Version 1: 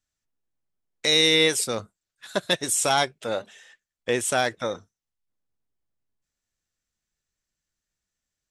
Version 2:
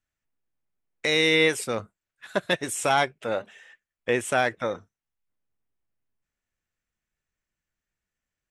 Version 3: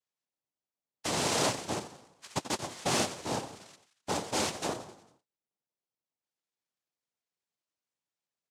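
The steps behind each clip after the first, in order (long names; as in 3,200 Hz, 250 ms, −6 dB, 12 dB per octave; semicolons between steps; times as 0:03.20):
high shelf with overshoot 3,200 Hz −7 dB, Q 1.5
mid-hump overdrive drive 13 dB, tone 1,400 Hz, clips at −8.5 dBFS; echo with shifted repeats 88 ms, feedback 52%, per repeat −31 Hz, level −12 dB; cochlear-implant simulation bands 2; level −9 dB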